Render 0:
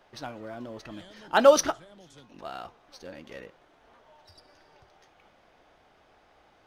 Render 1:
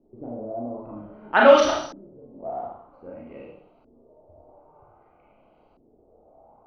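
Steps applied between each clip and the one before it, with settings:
adaptive Wiener filter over 25 samples
four-comb reverb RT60 0.61 s, combs from 26 ms, DRR −2.5 dB
auto-filter low-pass saw up 0.52 Hz 300–4,500 Hz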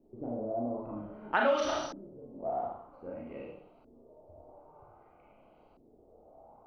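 downward compressor 4 to 1, threshold −24 dBFS, peak gain reduction 14 dB
level −2 dB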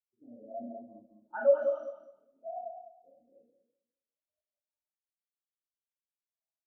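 leveller curve on the samples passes 1
repeating echo 204 ms, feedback 51%, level −4 dB
every bin expanded away from the loudest bin 2.5 to 1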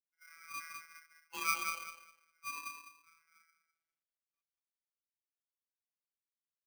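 running median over 25 samples
phases set to zero 161 Hz
ring modulator with a square carrier 1,800 Hz

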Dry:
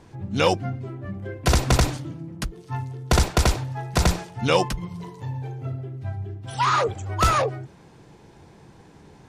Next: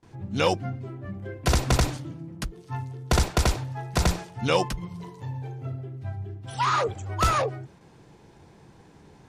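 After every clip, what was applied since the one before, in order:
noise gate with hold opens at −41 dBFS
level −3 dB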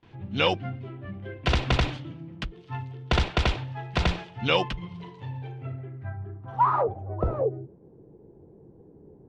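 low-pass filter sweep 3,100 Hz → 430 Hz, 0:05.47–0:07.46
level −2 dB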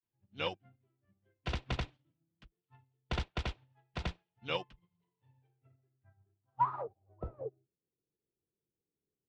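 expander for the loud parts 2.5 to 1, over −40 dBFS
level −7 dB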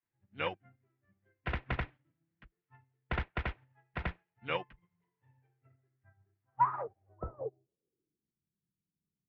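low-pass filter sweep 1,900 Hz → 190 Hz, 0:07.05–0:08.37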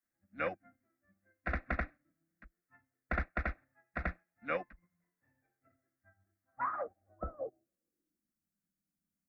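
phaser with its sweep stopped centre 620 Hz, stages 8
level +3.5 dB

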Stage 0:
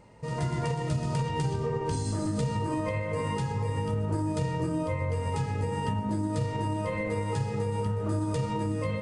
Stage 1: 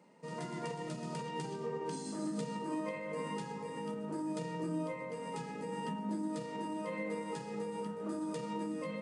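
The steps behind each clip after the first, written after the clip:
Chebyshev high-pass filter 170 Hz, order 5
low-shelf EQ 270 Hz +4 dB
level −7.5 dB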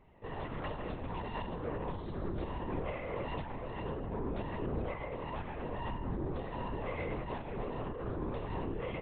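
tube saturation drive 35 dB, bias 0.65
linear-prediction vocoder at 8 kHz whisper
level +5 dB

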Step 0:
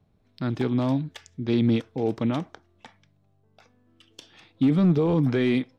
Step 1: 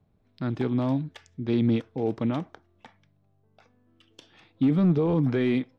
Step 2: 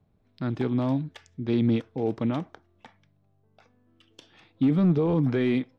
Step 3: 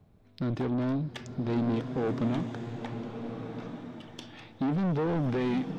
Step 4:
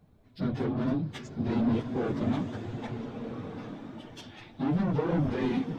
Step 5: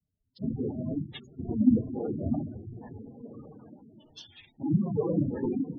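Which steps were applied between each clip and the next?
high-shelf EQ 4,200 Hz −9 dB; level −1.5 dB
no processing that can be heard
in parallel at +3 dB: downward compressor, threshold −32 dBFS, peak gain reduction 13.5 dB; on the sum: soft clipping −24 dBFS, distortion −9 dB; slow-attack reverb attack 1,390 ms, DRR 5.5 dB; level −1.5 dB
random phases in long frames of 50 ms
random phases in long frames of 50 ms; gate on every frequency bin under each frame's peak −15 dB strong; multiband upward and downward expander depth 70%; level −1 dB

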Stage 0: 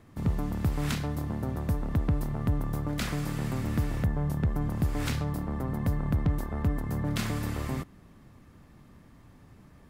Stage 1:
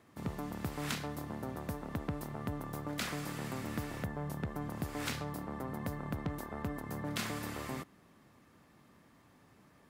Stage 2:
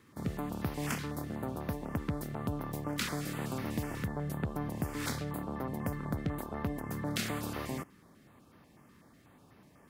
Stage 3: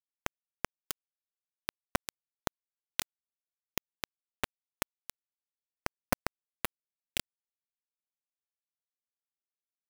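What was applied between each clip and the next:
high-pass filter 360 Hz 6 dB per octave; level −2.5 dB
notch on a step sequencer 8.1 Hz 680–7,800 Hz; level +3.5 dB
bit reduction 4 bits; level +5 dB

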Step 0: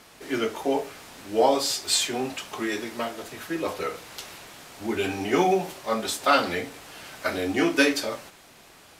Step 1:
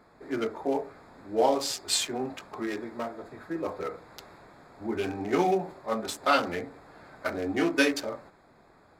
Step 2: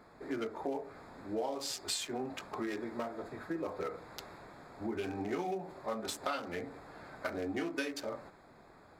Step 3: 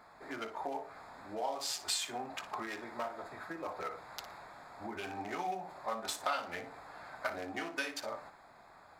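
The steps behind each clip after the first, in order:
adaptive Wiener filter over 15 samples; level −3 dB
downward compressor 6 to 1, threshold −34 dBFS, peak gain reduction 15.5 dB
low shelf with overshoot 560 Hz −8 dB, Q 1.5; flutter between parallel walls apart 10 metres, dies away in 0.26 s; level +1.5 dB

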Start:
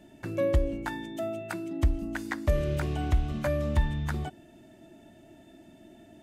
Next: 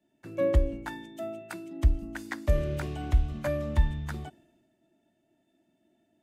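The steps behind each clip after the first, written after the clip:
multiband upward and downward expander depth 70%
level −3 dB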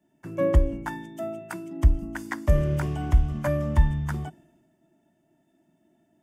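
thirty-one-band graphic EQ 160 Hz +8 dB, 500 Hz −4 dB, 1,000 Hz +5 dB, 2,500 Hz −4 dB, 4,000 Hz −12 dB
level +4 dB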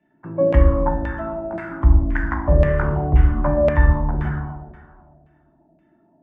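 dense smooth reverb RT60 1.8 s, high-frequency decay 0.9×, DRR −1.5 dB
auto-filter low-pass saw down 1.9 Hz 570–2,300 Hz
level +2 dB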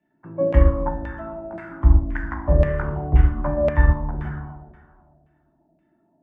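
expander for the loud parts 1.5 to 1, over −20 dBFS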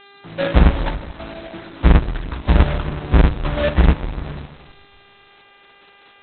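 each half-wave held at its own peak
hum with harmonics 400 Hz, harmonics 12, −44 dBFS −1 dB per octave
level −1.5 dB
Opus 8 kbit/s 48,000 Hz

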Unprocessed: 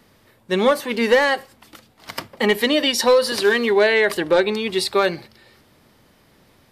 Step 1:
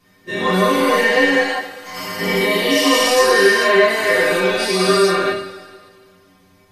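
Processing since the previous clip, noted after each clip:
every bin's largest magnitude spread in time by 480 ms
stiff-string resonator 91 Hz, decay 0.26 s, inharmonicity 0.008
coupled-rooms reverb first 0.32 s, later 1.9 s, from −18 dB, DRR −7 dB
level −4 dB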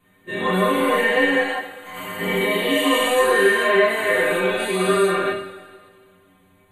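Butterworth band-reject 5,300 Hz, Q 1.4
level −3.5 dB

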